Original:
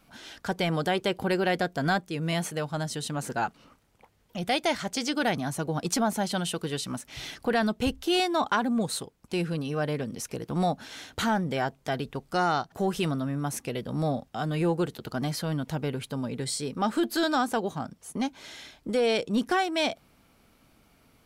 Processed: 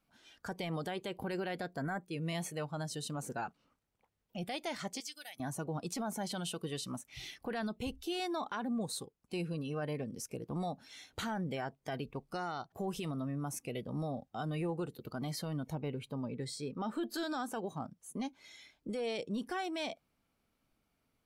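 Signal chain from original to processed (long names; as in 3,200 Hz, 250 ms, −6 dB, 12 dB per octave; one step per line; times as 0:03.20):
0:01.80–0:02.02: gain on a spectral selection 2,300–6,000 Hz −14 dB
0:05.00–0:05.40: first-order pre-emphasis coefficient 0.97
noise reduction from a noise print of the clip's start 11 dB
0:15.73–0:17.14: parametric band 11,000 Hz −9 dB 1.7 octaves
brickwall limiter −22.5 dBFS, peak gain reduction 9 dB
level −7 dB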